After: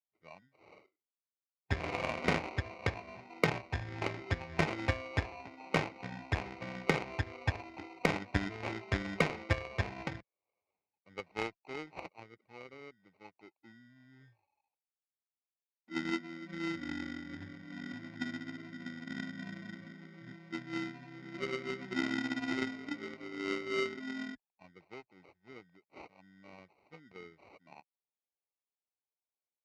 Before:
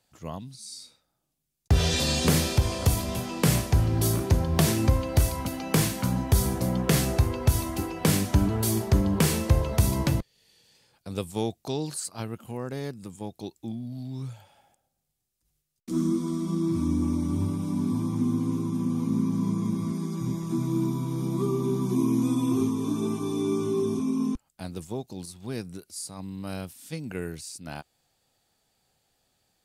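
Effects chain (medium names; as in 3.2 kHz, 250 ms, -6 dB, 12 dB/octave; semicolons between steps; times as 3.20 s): expander on every frequency bin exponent 1.5; sample-rate reducer 1.7 kHz, jitter 0%; cabinet simulation 120–4600 Hz, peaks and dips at 140 Hz -8 dB, 220 Hz -8 dB, 820 Hz +3 dB, 1.4 kHz -4 dB, 2.2 kHz +10 dB, 3.3 kHz -9 dB; Chebyshev shaper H 7 -20 dB, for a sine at -10 dBFS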